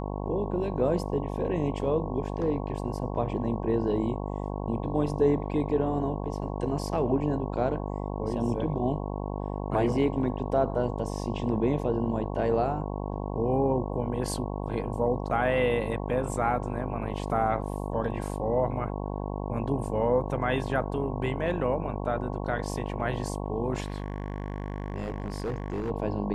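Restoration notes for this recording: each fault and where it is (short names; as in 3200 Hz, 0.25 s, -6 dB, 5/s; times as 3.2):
buzz 50 Hz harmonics 22 -33 dBFS
23.8–25.91 clipped -27 dBFS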